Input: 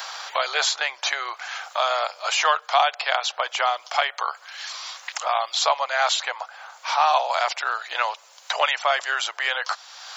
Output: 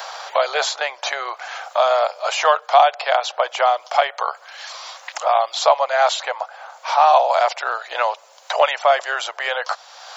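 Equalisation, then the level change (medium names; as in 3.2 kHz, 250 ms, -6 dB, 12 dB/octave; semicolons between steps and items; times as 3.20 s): peaking EQ 570 Hz +12 dB 1.5 oct; -1.5 dB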